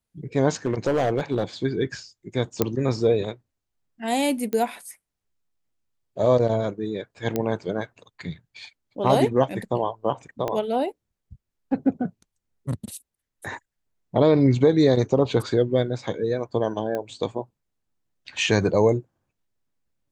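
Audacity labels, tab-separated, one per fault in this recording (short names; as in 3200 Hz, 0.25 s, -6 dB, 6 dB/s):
0.650000	1.430000	clipped -17 dBFS
2.620000	2.620000	pop -6 dBFS
4.530000	4.530000	pop -15 dBFS
7.360000	7.360000	pop -11 dBFS
10.480000	10.480000	pop -14 dBFS
16.950000	16.950000	pop -17 dBFS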